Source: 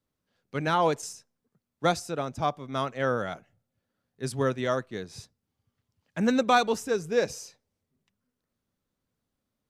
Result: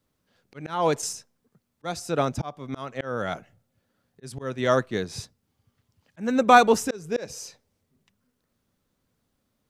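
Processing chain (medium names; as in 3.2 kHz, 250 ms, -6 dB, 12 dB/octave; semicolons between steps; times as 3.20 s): 6.28–6.76 s: peaking EQ 4.2 kHz -7 dB 1.1 oct; slow attack 405 ms; trim +8 dB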